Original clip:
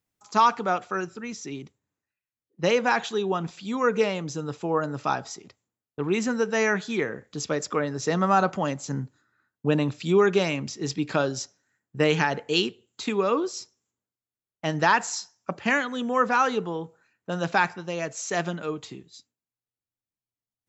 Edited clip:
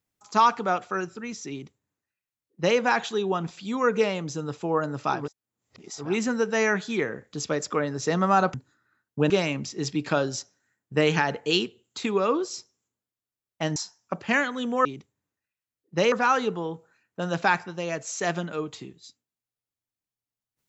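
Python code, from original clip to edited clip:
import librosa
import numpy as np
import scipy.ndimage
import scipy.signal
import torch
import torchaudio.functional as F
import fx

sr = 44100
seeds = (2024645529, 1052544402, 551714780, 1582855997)

y = fx.edit(x, sr, fx.duplicate(start_s=1.51, length_s=1.27, to_s=16.22),
    fx.reverse_span(start_s=5.21, length_s=0.84, crossfade_s=0.24),
    fx.cut(start_s=8.54, length_s=0.47),
    fx.cut(start_s=9.77, length_s=0.56),
    fx.cut(start_s=14.79, length_s=0.34), tone=tone)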